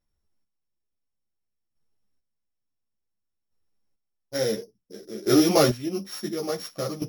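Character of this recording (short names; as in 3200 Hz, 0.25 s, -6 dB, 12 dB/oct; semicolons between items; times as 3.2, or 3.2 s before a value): a buzz of ramps at a fixed pitch in blocks of 8 samples; chopped level 0.57 Hz, depth 65%, duty 25%; a shimmering, thickened sound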